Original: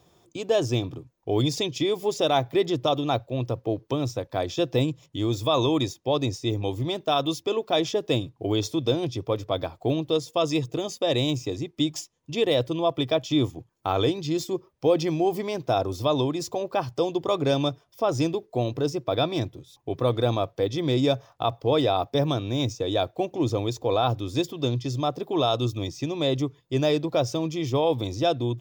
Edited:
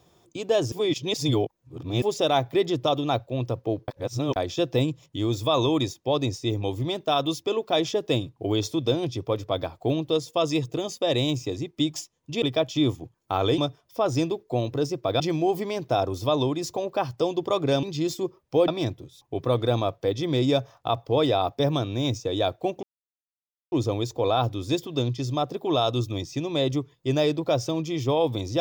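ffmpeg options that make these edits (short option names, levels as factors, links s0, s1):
-filter_complex "[0:a]asplit=11[s0][s1][s2][s3][s4][s5][s6][s7][s8][s9][s10];[s0]atrim=end=0.722[s11];[s1]atrim=start=0.718:end=2.022,asetpts=PTS-STARTPTS,areverse[s12];[s2]atrim=start=2.018:end=3.882[s13];[s3]atrim=start=3.878:end=4.362,asetpts=PTS-STARTPTS,areverse[s14];[s4]atrim=start=4.358:end=12.422[s15];[s5]atrim=start=12.968:end=14.132[s16];[s6]atrim=start=17.608:end=19.232[s17];[s7]atrim=start=14.978:end=17.612[s18];[s8]atrim=start=14.128:end=14.982[s19];[s9]atrim=start=19.228:end=23.38,asetpts=PTS-STARTPTS,afade=t=out:st=4.148:d=0.004:c=hsin,apad=pad_dur=0.89[s20];[s10]atrim=start=23.38,asetpts=PTS-STARTPTS,afade=t=in:d=0.004:c=hsin[s21];[s11][s12]acrossfade=d=0.004:c1=hsin:c2=hsin[s22];[s22][s13]acrossfade=d=0.004:c1=hsin:c2=hsin[s23];[s23][s14]acrossfade=d=0.004:c1=hsin:c2=hsin[s24];[s24][s15]acrossfade=d=0.004:c1=hsin:c2=hsin[s25];[s25][s16]acrossfade=d=0.004:c1=hsin:c2=hsin[s26];[s26][s17]acrossfade=d=0.004:c1=hsin:c2=hsin[s27];[s27][s18]acrossfade=d=0.004:c1=hsin:c2=hsin[s28];[s28][s19]acrossfade=d=0.004:c1=hsin:c2=hsin[s29];[s20][s21]concat=n=2:v=0:a=1[s30];[s29][s30]acrossfade=d=0.004:c1=hsin:c2=hsin"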